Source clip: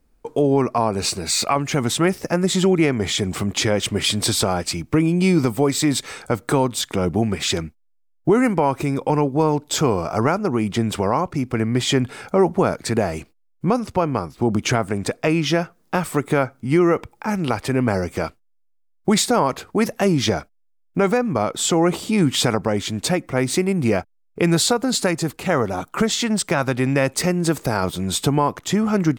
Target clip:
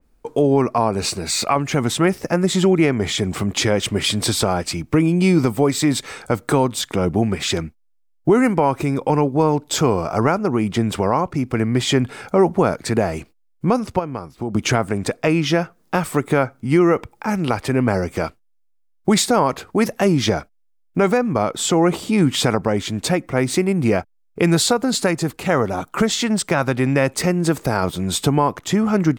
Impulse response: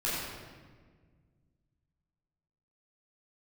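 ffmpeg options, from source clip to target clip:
-filter_complex "[0:a]asettb=1/sr,asplit=3[s0][s1][s2];[s0]atrim=end=13.994[s3];[s1]atrim=start=13.99:end=14.55,asetpts=PTS-STARTPTS,afade=t=in:d=0.004:c=qsin,afade=t=out:st=0.556:d=0.004:c=qsin,acompressor=threshold=0.0126:ratio=1.5[s4];[s2]atrim=start=14.546[s5];[s3][s4]acrossfade=d=0.004:c1=hsin:c2=qsin[s6];[s6][s5]acrossfade=d=0.004:c1=qsin:c2=hsin,adynamicequalizer=threshold=0.0141:dfrequency=2900:dqfactor=0.7:tfrequency=2900:tqfactor=0.7:attack=5:release=100:ratio=0.375:range=1.5:mode=cutabove:tftype=highshelf,volume=1.19"

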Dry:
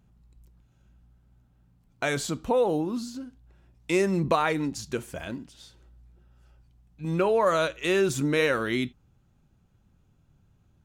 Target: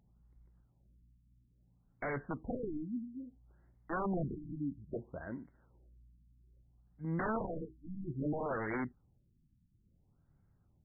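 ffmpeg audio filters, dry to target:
-af "aeval=exprs='(mod(10*val(0)+1,2)-1)/10':c=same,aeval=exprs='val(0)+0.01*sin(2*PI*3400*n/s)':c=same,afftfilt=real='re*lt(b*sr/1024,300*pow(2300/300,0.5+0.5*sin(2*PI*0.6*pts/sr)))':imag='im*lt(b*sr/1024,300*pow(2300/300,0.5+0.5*sin(2*PI*0.6*pts/sr)))':win_size=1024:overlap=0.75,volume=0.422"

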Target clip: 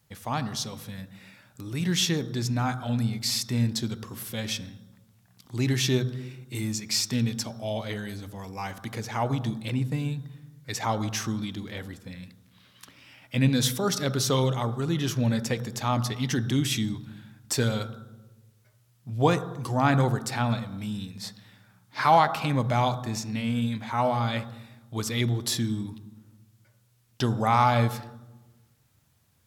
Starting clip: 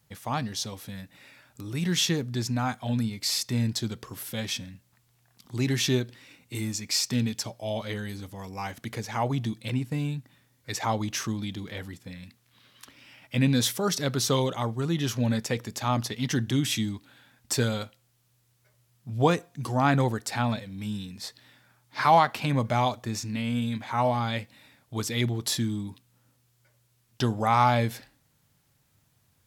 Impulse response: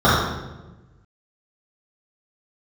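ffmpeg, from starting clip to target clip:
-filter_complex "[0:a]asplit=2[s0][s1];[1:a]atrim=start_sample=2205,adelay=39[s2];[s1][s2]afir=irnorm=-1:irlink=0,volume=0.01[s3];[s0][s3]amix=inputs=2:normalize=0"

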